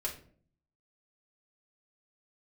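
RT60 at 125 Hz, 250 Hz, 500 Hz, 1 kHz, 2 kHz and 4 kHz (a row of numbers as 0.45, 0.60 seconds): 0.85, 0.75, 0.60, 0.40, 0.40, 0.30 seconds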